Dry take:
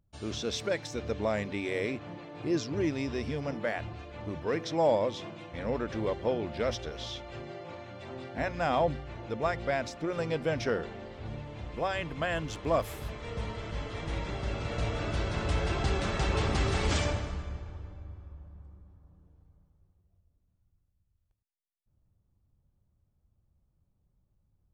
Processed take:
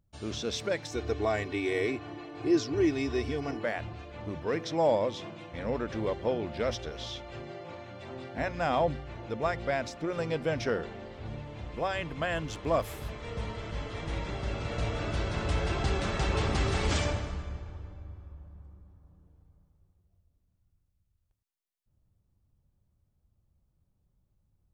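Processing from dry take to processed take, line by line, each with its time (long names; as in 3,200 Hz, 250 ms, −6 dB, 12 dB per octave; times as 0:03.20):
0:00.91–0:03.64: comb filter 2.7 ms, depth 80%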